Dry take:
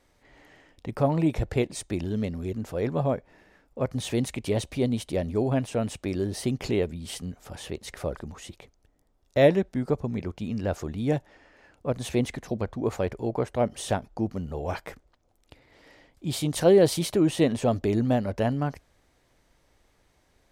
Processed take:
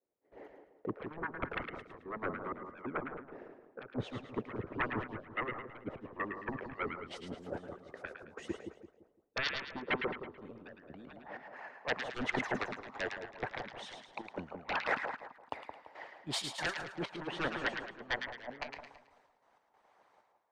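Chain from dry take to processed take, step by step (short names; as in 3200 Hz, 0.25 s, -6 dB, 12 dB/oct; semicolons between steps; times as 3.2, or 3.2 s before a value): band-pass sweep 440 Hz -> 900 Hz, 10.17–11.58; high shelf 3100 Hz +8 dB; treble ducked by the level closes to 350 Hz, closed at -27 dBFS; sine folder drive 17 dB, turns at -17.5 dBFS; reverse; compressor 16:1, threshold -36 dBFS, peak gain reduction 17 dB; reverse; harmonic-percussive split harmonic -17 dB; step gate "..x..x.x.x.x.xxx" 95 bpm -12 dB; dynamic EQ 1800 Hz, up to +6 dB, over -59 dBFS, Q 2; on a send: split-band echo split 1200 Hz, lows 0.17 s, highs 0.109 s, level -4.5 dB; on the sum: three-band expander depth 70%; gain +2.5 dB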